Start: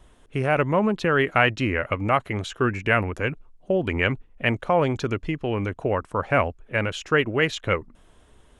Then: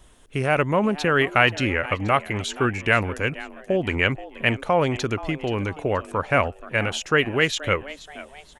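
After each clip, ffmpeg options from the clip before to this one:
-filter_complex "[0:a]highshelf=f=3.4k:g=9,asplit=4[a][b][c][d];[b]adelay=478,afreqshift=140,volume=-17dB[e];[c]adelay=956,afreqshift=280,volume=-25dB[f];[d]adelay=1434,afreqshift=420,volume=-32.9dB[g];[a][e][f][g]amix=inputs=4:normalize=0"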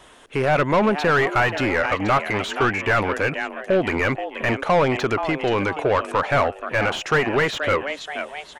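-filter_complex "[0:a]asplit=2[a][b];[b]highpass=f=720:p=1,volume=26dB,asoftclip=type=tanh:threshold=-2dB[c];[a][c]amix=inputs=2:normalize=0,lowpass=f=2.3k:p=1,volume=-6dB,acrossover=split=2000[d][e];[e]alimiter=limit=-18.5dB:level=0:latency=1:release=42[f];[d][f]amix=inputs=2:normalize=0,volume=-6dB"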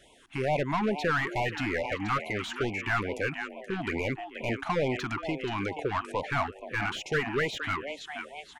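-af "afftfilt=real='re*(1-between(b*sr/1024,440*pow(1500/440,0.5+0.5*sin(2*PI*2.3*pts/sr))/1.41,440*pow(1500/440,0.5+0.5*sin(2*PI*2.3*pts/sr))*1.41))':imag='im*(1-between(b*sr/1024,440*pow(1500/440,0.5+0.5*sin(2*PI*2.3*pts/sr))/1.41,440*pow(1500/440,0.5+0.5*sin(2*PI*2.3*pts/sr))*1.41))':win_size=1024:overlap=0.75,volume=-8dB"

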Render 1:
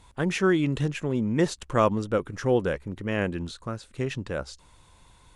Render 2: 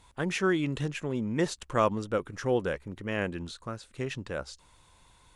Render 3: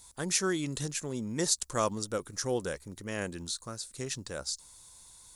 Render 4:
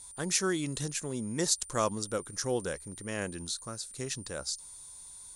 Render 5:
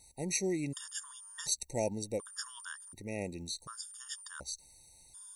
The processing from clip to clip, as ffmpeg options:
-af "lowshelf=f=470:g=-4,volume=-2dB"
-af "aexciter=amount=7.9:drive=4:freq=4.1k,volume=-4.5dB"
-af "aeval=exprs='val(0)+0.00447*sin(2*PI*9100*n/s)':c=same"
-af "afftfilt=real='re*gt(sin(2*PI*0.68*pts/sr)*(1-2*mod(floor(b*sr/1024/930),2)),0)':imag='im*gt(sin(2*PI*0.68*pts/sr)*(1-2*mod(floor(b*sr/1024/930),2)),0)':win_size=1024:overlap=0.75,volume=-2dB"

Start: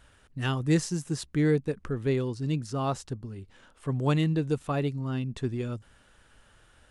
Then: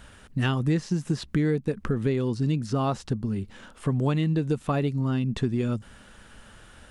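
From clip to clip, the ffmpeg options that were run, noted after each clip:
-filter_complex "[0:a]acrossover=split=4800[a][b];[b]acompressor=threshold=-53dB:ratio=4:attack=1:release=60[c];[a][c]amix=inputs=2:normalize=0,equalizer=f=210:w=3.6:g=8,acompressor=threshold=-31dB:ratio=5,volume=9dB"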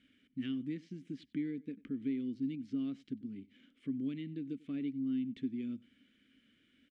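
-filter_complex "[0:a]asplit=3[a][b][c];[a]bandpass=f=270:t=q:w=8,volume=0dB[d];[b]bandpass=f=2.29k:t=q:w=8,volume=-6dB[e];[c]bandpass=f=3.01k:t=q:w=8,volume=-9dB[f];[d][e][f]amix=inputs=3:normalize=0,aecho=1:1:95:0.0708,volume=-4dB"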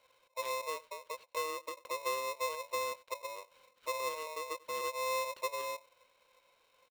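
-af "aresample=8000,aresample=44100,aeval=exprs='val(0)*sgn(sin(2*PI*780*n/s))':c=same"

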